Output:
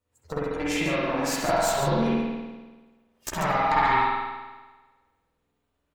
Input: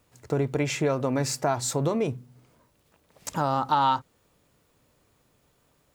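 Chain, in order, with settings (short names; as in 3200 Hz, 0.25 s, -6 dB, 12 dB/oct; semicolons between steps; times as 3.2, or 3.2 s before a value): chorus voices 6, 0.64 Hz, delay 12 ms, depth 2.3 ms; compressor 5:1, threshold -32 dBFS, peak gain reduction 12 dB; spectral noise reduction 20 dB; added harmonics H 4 -11 dB, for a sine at -20 dBFS; on a send: loudspeakers at several distances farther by 22 m -10 dB, 48 m -8 dB; on the sum: spring tank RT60 1.3 s, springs 48 ms, chirp 25 ms, DRR -7 dB; gain +4.5 dB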